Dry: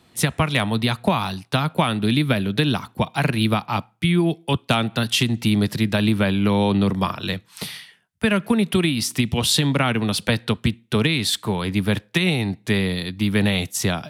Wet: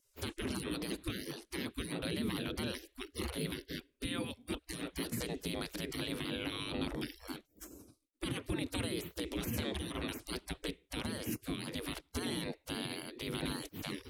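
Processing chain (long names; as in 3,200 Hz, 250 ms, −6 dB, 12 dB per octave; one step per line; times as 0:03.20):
gate on every frequency bin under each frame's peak −25 dB weak
drawn EQ curve 110 Hz 0 dB, 300 Hz +4 dB, 760 Hz −21 dB
brickwall limiter −43.5 dBFS, peak gain reduction 10.5 dB
level +16.5 dB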